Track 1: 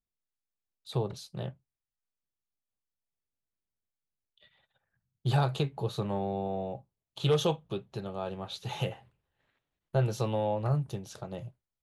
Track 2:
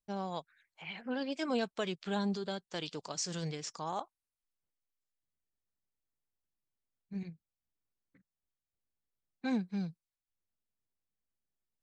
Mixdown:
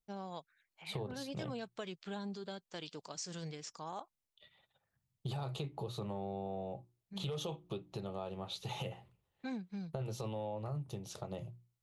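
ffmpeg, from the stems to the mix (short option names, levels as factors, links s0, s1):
-filter_complex "[0:a]equalizer=f=1600:w=6.4:g=-10,bandreject=f=60:t=h:w=6,bandreject=f=120:t=h:w=6,bandreject=f=180:t=h:w=6,bandreject=f=240:t=h:w=6,bandreject=f=300:t=h:w=6,bandreject=f=360:t=h:w=6,alimiter=limit=0.0708:level=0:latency=1:release=22,volume=0.944[s0];[1:a]volume=0.531[s1];[s0][s1]amix=inputs=2:normalize=0,acompressor=threshold=0.0126:ratio=4"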